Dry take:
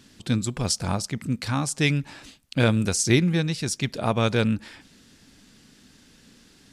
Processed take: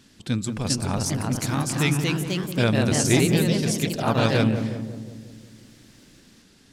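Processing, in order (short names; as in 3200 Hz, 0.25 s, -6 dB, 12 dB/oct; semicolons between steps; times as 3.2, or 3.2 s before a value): echoes that change speed 0.432 s, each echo +2 st, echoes 3; darkening echo 0.18 s, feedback 61%, low-pass 910 Hz, level -7 dB; gain -1.5 dB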